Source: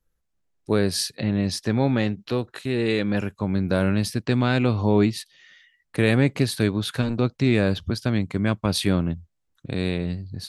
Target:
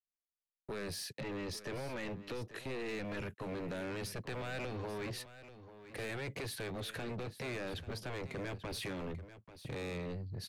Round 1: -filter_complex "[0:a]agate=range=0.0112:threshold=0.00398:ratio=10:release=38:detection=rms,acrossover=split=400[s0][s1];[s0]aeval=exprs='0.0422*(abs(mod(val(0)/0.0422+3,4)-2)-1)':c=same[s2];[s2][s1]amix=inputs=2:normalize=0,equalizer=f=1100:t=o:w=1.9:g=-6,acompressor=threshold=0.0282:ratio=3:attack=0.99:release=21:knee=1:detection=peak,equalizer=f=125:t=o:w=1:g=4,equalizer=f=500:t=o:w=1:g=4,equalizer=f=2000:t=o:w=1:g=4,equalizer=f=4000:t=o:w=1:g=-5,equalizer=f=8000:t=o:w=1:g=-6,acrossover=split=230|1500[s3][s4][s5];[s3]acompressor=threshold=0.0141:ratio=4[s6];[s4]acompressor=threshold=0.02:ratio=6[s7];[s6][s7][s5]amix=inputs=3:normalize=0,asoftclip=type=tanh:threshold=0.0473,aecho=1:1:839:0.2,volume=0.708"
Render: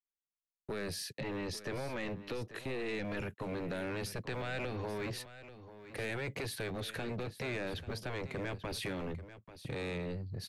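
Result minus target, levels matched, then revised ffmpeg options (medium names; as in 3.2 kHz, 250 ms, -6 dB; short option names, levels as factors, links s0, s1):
saturation: distortion -8 dB
-filter_complex "[0:a]agate=range=0.0112:threshold=0.00398:ratio=10:release=38:detection=rms,acrossover=split=400[s0][s1];[s0]aeval=exprs='0.0422*(abs(mod(val(0)/0.0422+3,4)-2)-1)':c=same[s2];[s2][s1]amix=inputs=2:normalize=0,equalizer=f=1100:t=o:w=1.9:g=-6,acompressor=threshold=0.0282:ratio=3:attack=0.99:release=21:knee=1:detection=peak,equalizer=f=125:t=o:w=1:g=4,equalizer=f=500:t=o:w=1:g=4,equalizer=f=2000:t=o:w=1:g=4,equalizer=f=4000:t=o:w=1:g=-5,equalizer=f=8000:t=o:w=1:g=-6,acrossover=split=230|1500[s3][s4][s5];[s3]acompressor=threshold=0.0141:ratio=4[s6];[s4]acompressor=threshold=0.02:ratio=6[s7];[s6][s7][s5]amix=inputs=3:normalize=0,asoftclip=type=tanh:threshold=0.0224,aecho=1:1:839:0.2,volume=0.708"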